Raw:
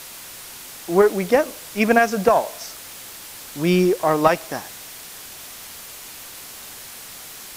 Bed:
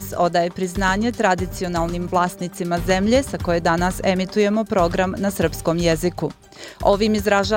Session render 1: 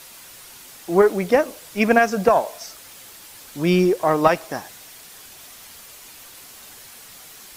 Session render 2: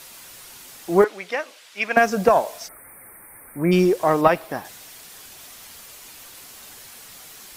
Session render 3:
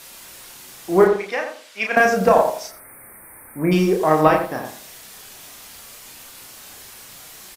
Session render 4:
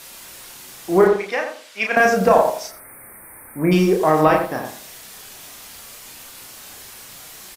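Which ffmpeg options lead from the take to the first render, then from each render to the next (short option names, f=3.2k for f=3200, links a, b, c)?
-af "afftdn=nr=6:nf=-39"
-filter_complex "[0:a]asettb=1/sr,asplit=3[a][b][c];[a]atrim=end=1.044[d];[b]atrim=start=1.04:end=1.97,asetpts=PTS-STARTPTS,afade=t=in:d=0.004:c=qsin,afade=t=out:st=0.926:d=0.004:c=qsin,bandpass=f=2.6k:t=q:w=0.8[e];[c]atrim=start=1.966[f];[d][e]acrossfade=d=0.004:c1=hsin:c2=qsin[g];[g][f]acrossfade=d=0.004:c1=qsin:c2=hsin,asplit=3[h][i][j];[h]afade=t=out:st=2.67:d=0.02[k];[i]asuperstop=centerf=4600:order=20:qfactor=0.74,afade=t=in:st=2.67:d=0.02,afade=t=out:st=3.71:d=0.02[l];[j]afade=t=in:st=3.71:d=0.02[m];[k][l][m]amix=inputs=3:normalize=0,asettb=1/sr,asplit=3[n][o][p];[n]atrim=end=4.214[q];[o]atrim=start=4.21:end=4.65,asetpts=PTS-STARTPTS,afade=t=in:d=0.004:c=qsin,afade=t=out:st=0.436:d=0.004:c=qsin,equalizer=f=6.5k:w=1.2:g=-9.5[r];[p]atrim=start=4.646[s];[q][r]acrossfade=d=0.004:c1=hsin:c2=qsin[t];[t][s]acrossfade=d=0.004:c1=qsin:c2=hsin"
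-filter_complex "[0:a]asplit=2[a][b];[b]adelay=32,volume=-4dB[c];[a][c]amix=inputs=2:normalize=0,asplit=2[d][e];[e]adelay=86,lowpass=f=1.2k:p=1,volume=-5dB,asplit=2[f][g];[g]adelay=86,lowpass=f=1.2k:p=1,volume=0.28,asplit=2[h][i];[i]adelay=86,lowpass=f=1.2k:p=1,volume=0.28,asplit=2[j][k];[k]adelay=86,lowpass=f=1.2k:p=1,volume=0.28[l];[d][f][h][j][l]amix=inputs=5:normalize=0"
-af "volume=1.5dB,alimiter=limit=-3dB:level=0:latency=1"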